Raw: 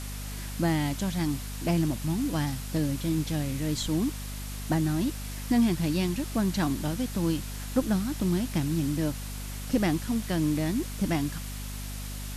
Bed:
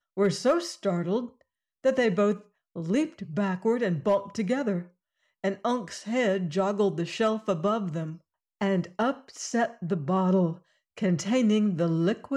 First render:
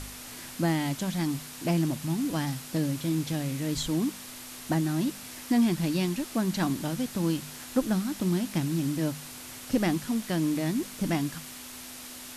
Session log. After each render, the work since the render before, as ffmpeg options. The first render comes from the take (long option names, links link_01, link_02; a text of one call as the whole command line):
ffmpeg -i in.wav -af "bandreject=frequency=50:width_type=h:width=4,bandreject=frequency=100:width_type=h:width=4,bandreject=frequency=150:width_type=h:width=4,bandreject=frequency=200:width_type=h:width=4" out.wav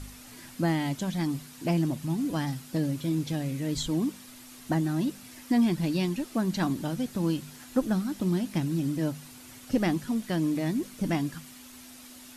ffmpeg -i in.wav -af "afftdn=noise_reduction=8:noise_floor=-43" out.wav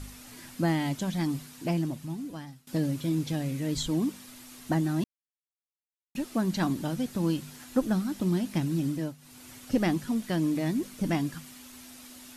ffmpeg -i in.wav -filter_complex "[0:a]asplit=5[link_01][link_02][link_03][link_04][link_05];[link_01]atrim=end=2.67,asetpts=PTS-STARTPTS,afade=type=out:start_time=1.43:duration=1.24:silence=0.0794328[link_06];[link_02]atrim=start=2.67:end=5.04,asetpts=PTS-STARTPTS,afade=type=in:duration=0.004:curve=hsin:silence=0.0794328,afade=type=out:start_time=2.366:duration=0.004:curve=hsin[link_07];[link_03]atrim=start=5.04:end=6.15,asetpts=PTS-STARTPTS,volume=0[link_08];[link_04]atrim=start=6.15:end=9.17,asetpts=PTS-STARTPTS,afade=type=in:duration=0.004:curve=hsin,afade=type=out:start_time=2.65:duration=0.37:curve=qsin:silence=0.199526[link_09];[link_05]atrim=start=9.17,asetpts=PTS-STARTPTS,afade=type=in:duration=0.37:curve=qsin:silence=0.199526[link_10];[link_06][link_07][link_08][link_09][link_10]concat=n=5:v=0:a=1" out.wav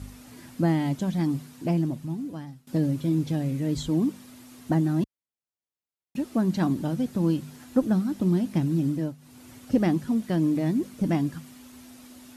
ffmpeg -i in.wav -af "highpass=47,tiltshelf=frequency=970:gain=4.5" out.wav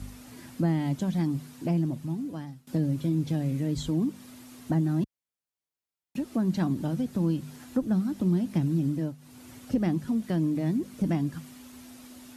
ffmpeg -i in.wav -filter_complex "[0:a]acrossover=split=200[link_01][link_02];[link_02]acompressor=threshold=-32dB:ratio=2[link_03];[link_01][link_03]amix=inputs=2:normalize=0" out.wav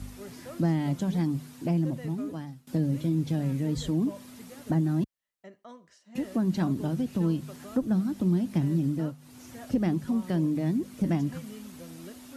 ffmpeg -i in.wav -i bed.wav -filter_complex "[1:a]volume=-21dB[link_01];[0:a][link_01]amix=inputs=2:normalize=0" out.wav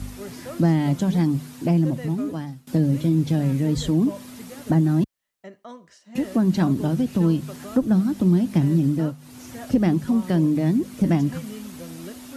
ffmpeg -i in.wav -af "volume=7dB" out.wav